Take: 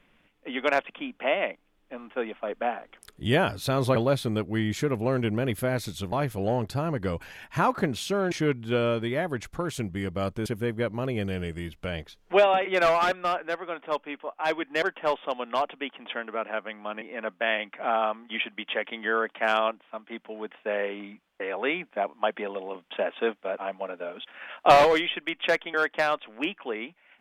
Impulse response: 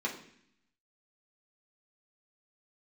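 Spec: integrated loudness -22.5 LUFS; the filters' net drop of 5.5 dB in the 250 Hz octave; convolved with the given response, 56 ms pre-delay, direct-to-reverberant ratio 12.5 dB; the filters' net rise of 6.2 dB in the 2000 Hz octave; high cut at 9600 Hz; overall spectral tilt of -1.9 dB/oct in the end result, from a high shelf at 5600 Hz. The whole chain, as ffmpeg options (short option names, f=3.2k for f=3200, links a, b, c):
-filter_complex "[0:a]lowpass=9.6k,equalizer=f=250:t=o:g=-8,equalizer=f=2k:t=o:g=7.5,highshelf=f=5.6k:g=4,asplit=2[a][b];[1:a]atrim=start_sample=2205,adelay=56[c];[b][c]afir=irnorm=-1:irlink=0,volume=-17.5dB[d];[a][d]amix=inputs=2:normalize=0,volume=3dB"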